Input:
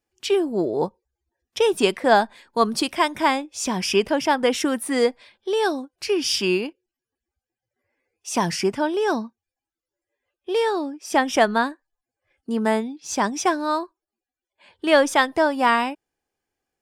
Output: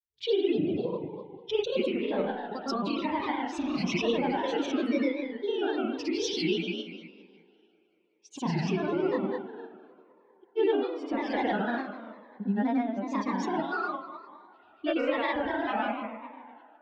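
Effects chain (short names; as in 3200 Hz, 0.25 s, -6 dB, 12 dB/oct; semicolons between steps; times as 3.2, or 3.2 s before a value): per-bin expansion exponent 1.5; LPF 4100 Hz 24 dB/oct; compressor, threshold -27 dBFS, peak gain reduction 13.5 dB; spring tank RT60 1.5 s, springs 35 ms, chirp 65 ms, DRR -4 dB; grains, pitch spread up and down by 3 st; on a send: band-limited delay 0.19 s, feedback 72%, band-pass 850 Hz, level -20 dB; on the sum: cascading phaser falling 0.99 Hz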